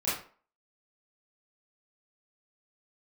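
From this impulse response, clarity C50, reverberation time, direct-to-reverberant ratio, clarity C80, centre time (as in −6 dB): 3.0 dB, 0.45 s, −11.5 dB, 8.5 dB, 48 ms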